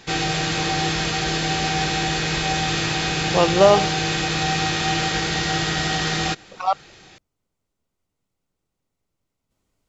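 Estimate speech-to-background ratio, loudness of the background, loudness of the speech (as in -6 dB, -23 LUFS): 2.0 dB, -21.5 LUFS, -19.5 LUFS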